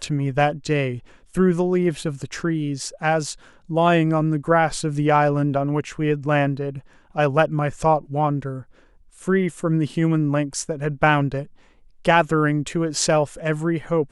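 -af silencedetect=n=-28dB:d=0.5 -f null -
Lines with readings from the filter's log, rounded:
silence_start: 8.59
silence_end: 9.28 | silence_duration: 0.68
silence_start: 11.43
silence_end: 12.05 | silence_duration: 0.62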